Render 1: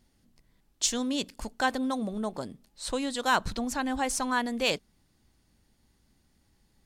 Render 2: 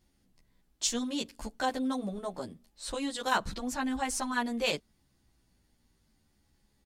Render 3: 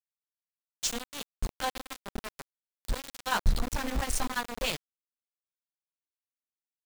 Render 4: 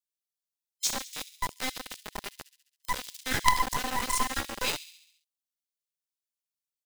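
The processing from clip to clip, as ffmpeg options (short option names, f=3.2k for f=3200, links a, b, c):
-filter_complex "[0:a]asplit=2[a][b];[b]adelay=11.4,afreqshift=-0.61[c];[a][c]amix=inputs=2:normalize=1"
-af "asubboost=boost=11.5:cutoff=98,areverse,acompressor=mode=upward:threshold=-34dB:ratio=2.5,areverse,aeval=exprs='val(0)*gte(abs(val(0)),0.0376)':c=same"
-filter_complex "[0:a]afftfilt=real='real(if(between(b,1,1008),(2*floor((b-1)/48)+1)*48-b,b),0)':imag='imag(if(between(b,1,1008),(2*floor((b-1)/48)+1)*48-b,b),0)*if(between(b,1,1008),-1,1)':win_size=2048:overlap=0.75,acrossover=split=2700[a][b];[a]acrusher=bits=3:dc=4:mix=0:aa=0.000001[c];[b]aecho=1:1:68|136|204|272|340|408|476:0.266|0.154|0.0895|0.0519|0.0301|0.0175|0.0101[d];[c][d]amix=inputs=2:normalize=0,volume=2.5dB"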